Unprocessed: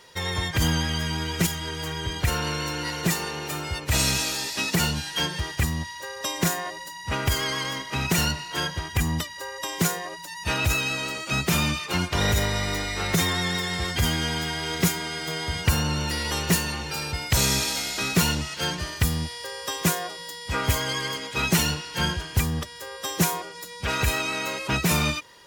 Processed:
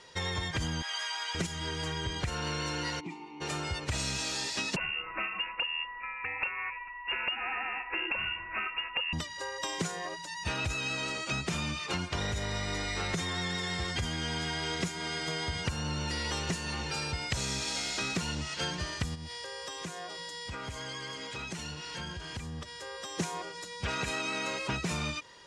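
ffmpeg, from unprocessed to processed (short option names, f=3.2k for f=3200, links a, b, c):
-filter_complex "[0:a]asettb=1/sr,asplit=3[a][b][c];[a]atrim=end=0.824[d];[b]atrim=start=0.82:end=1.35,asetpts=PTS-STARTPTS,afade=t=in:d=0.004:c=qsin,afade=t=out:st=0.526:d=0.004:c=qsin,highpass=f=750:w=0.5412,highpass=f=750:w=1.3066[e];[c]atrim=start=1.346[f];[d][e]acrossfade=d=0.004:c1=hsin:c2=qsin[g];[g][f]acrossfade=d=0.004:c1=qsin:c2=hsin,asplit=3[h][i][j];[h]afade=t=out:st=2.99:d=0.02[k];[i]asplit=3[l][m][n];[l]bandpass=f=300:t=q:w=8,volume=0dB[o];[m]bandpass=f=870:t=q:w=8,volume=-6dB[p];[n]bandpass=f=2.24k:t=q:w=8,volume=-9dB[q];[o][p][q]amix=inputs=3:normalize=0,afade=t=in:st=2.99:d=0.02,afade=t=out:st=3.4:d=0.02[r];[j]afade=t=in:st=3.4:d=0.02[s];[k][r][s]amix=inputs=3:normalize=0,asettb=1/sr,asplit=3[t][u][v];[t]atrim=end=4.764[w];[u]atrim=start=4.76:end=9.13,asetpts=PTS-STARTPTS,afade=t=in:d=0.004:c=qsin,afade=t=out:st=4.366:d=0.004:c=qsin,lowpass=f=2.5k:t=q:w=0.5098,lowpass=f=2.5k:t=q:w=0.6013,lowpass=f=2.5k:t=q:w=0.9,lowpass=f=2.5k:t=q:w=2.563,afreqshift=-2900[x];[v]atrim=start=9.126[y];[w][x]acrossfade=d=0.004:c1=hsin:c2=qsin[z];[z][y]acrossfade=d=0.004:c1=qsin:c2=hsin,asplit=3[aa][ab][ac];[aa]afade=t=out:st=19.14:d=0.02[ad];[ab]acompressor=threshold=-34dB:ratio=6:attack=3.2:release=140:knee=1:detection=peak,afade=t=in:st=19.14:d=0.02,afade=t=out:st=23.18:d=0.02[ae];[ac]afade=t=in:st=23.18:d=0.02[af];[ad][ae][af]amix=inputs=3:normalize=0,asettb=1/sr,asplit=3[ag][ah][ai];[ag]atrim=end=23.974[aj];[ah]atrim=start=23.97:end=24.51,asetpts=PTS-STARTPTS,afade=t=in:d=0.004:c=qsin,afade=t=out:st=0.536:d=0.004:c=qsin,lowshelf=f=120:t=q:w=1.5:g=-9.5[ak];[ai]atrim=start=24.506[al];[aj][ak]acrossfade=d=0.004:c1=hsin:c2=qsin[am];[am][al]acrossfade=d=0.004:c1=qsin:c2=hsin,lowpass=f=8.5k:w=0.5412,lowpass=f=8.5k:w=1.3066,acompressor=threshold=-27dB:ratio=10,volume=-2.5dB"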